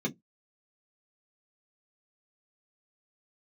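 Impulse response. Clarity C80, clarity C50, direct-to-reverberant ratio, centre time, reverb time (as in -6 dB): 37.5 dB, 27.0 dB, 0.0 dB, 9 ms, 0.15 s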